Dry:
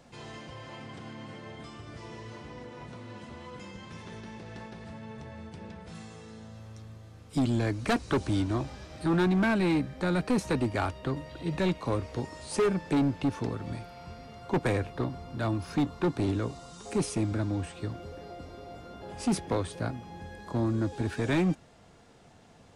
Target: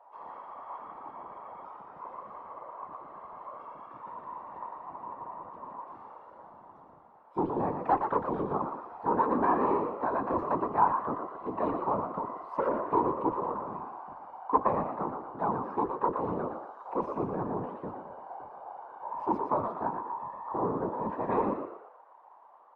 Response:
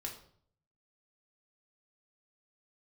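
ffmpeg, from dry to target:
-filter_complex "[0:a]bandreject=f=60:t=h:w=6,bandreject=f=120:t=h:w=6,bandreject=f=180:t=h:w=6,bandreject=f=240:t=h:w=6,bandreject=f=300:t=h:w=6,bandreject=f=360:t=h:w=6,bandreject=f=420:t=h:w=6,acrossover=split=380[a][b];[a]aeval=exprs='sgn(val(0))*max(abs(val(0))-0.00531,0)':c=same[c];[c][b]amix=inputs=2:normalize=0,afreqshift=95,lowpass=f=970:t=q:w=7.1,afftfilt=real='hypot(re,im)*cos(2*PI*random(0))':imag='hypot(re,im)*sin(2*PI*random(1))':win_size=512:overlap=0.75,asplit=6[d][e][f][g][h][i];[e]adelay=117,afreqshift=73,volume=-7dB[j];[f]adelay=234,afreqshift=146,volume=-15.2dB[k];[g]adelay=351,afreqshift=219,volume=-23.4dB[l];[h]adelay=468,afreqshift=292,volume=-31.5dB[m];[i]adelay=585,afreqshift=365,volume=-39.7dB[n];[d][j][k][l][m][n]amix=inputs=6:normalize=0,volume=1dB"

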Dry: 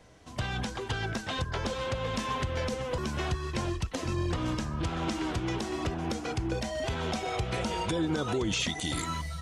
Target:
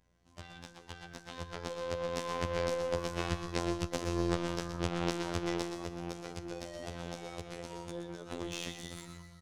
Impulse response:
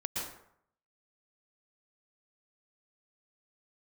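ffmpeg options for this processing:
-filter_complex "[0:a]asettb=1/sr,asplit=3[a][b][c];[a]atrim=end=5.654[d];[b]atrim=start=5.65:end=8.31,asetpts=PTS-STARTPTS,afade=t=in:d=0.004:c=qsin,afade=t=out:st=2.656:d=0.004:c=qsin,acrossover=split=790|5900[e][f][g];[e]acompressor=threshold=-34dB:ratio=4[h];[f]acompressor=threshold=-43dB:ratio=4[i];[g]acompressor=threshold=-49dB:ratio=4[j];[h][i][j]amix=inputs=3:normalize=0[k];[c]atrim=start=8.306[l];[d][k]acrossfade=d=0.004:c1=hsin:c2=qsin[m];[m][l]acrossfade=d=0.004:c1=qsin:c2=hsin,aeval=exprs='0.0891*(cos(1*acos(clip(val(0)/0.0891,-1,1)))-cos(1*PI/2))+0.0112*(cos(3*acos(clip(val(0)/0.0891,-1,1)))-cos(3*PI/2))':c=same,afftfilt=real='hypot(re,im)*cos(PI*b)':imag='0':win_size=2048:overlap=0.75,asoftclip=type=hard:threshold=-15.5dB,aeval=exprs='val(0)+0.000794*(sin(2*PI*60*n/s)+sin(2*PI*2*60*n/s)/2+sin(2*PI*3*60*n/s)/3+sin(2*PI*4*60*n/s)/4+sin(2*PI*5*60*n/s)/5)':c=same,dynaudnorm=f=560:g=7:m=9.5dB,aeval=exprs='0.708*(cos(1*acos(clip(val(0)/0.708,-1,1)))-cos(1*PI/2))+0.126*(cos(3*acos(clip(val(0)/0.708,-1,1)))-cos(3*PI/2))+0.0398*(cos(6*acos(clip(val(0)/0.708,-1,1)))-cos(6*PI/2))':c=same,equalizer=f=280:w=3:g=-2,aecho=1:1:122|244|366|488:0.355|0.128|0.046|0.0166,adynamicequalizer=threshold=0.00631:dfrequency=450:dqfactor=1.3:tfrequency=450:tqfactor=1.3:attack=5:release=100:ratio=0.375:range=2.5:mode=boostabove:tftype=bell,volume=-5dB"

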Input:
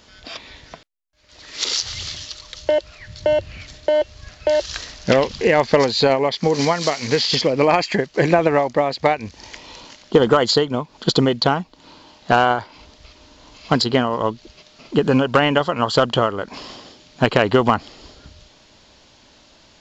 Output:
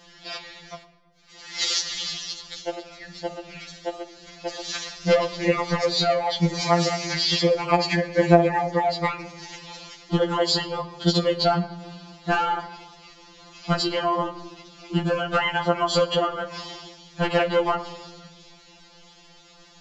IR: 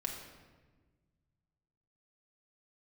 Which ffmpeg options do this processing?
-filter_complex "[0:a]acompressor=threshold=-18dB:ratio=2.5,asplit=2[a][b];[1:a]atrim=start_sample=2205[c];[b][c]afir=irnorm=-1:irlink=0,volume=-6.5dB[d];[a][d]amix=inputs=2:normalize=0,afftfilt=real='re*2.83*eq(mod(b,8),0)':imag='im*2.83*eq(mod(b,8),0)':win_size=2048:overlap=0.75,volume=-1dB"

